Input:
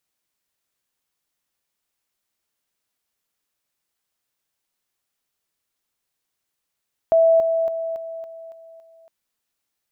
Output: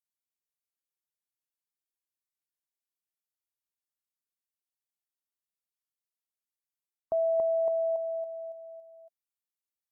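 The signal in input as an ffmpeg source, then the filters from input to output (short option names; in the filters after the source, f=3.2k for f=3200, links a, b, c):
-f lavfi -i "aevalsrc='pow(10,(-11.5-6*floor(t/0.28))/20)*sin(2*PI*657*t)':d=1.96:s=44100"
-af "afftdn=nr=23:nf=-38,aemphasis=mode=production:type=cd,areverse,acompressor=threshold=-25dB:ratio=12,areverse"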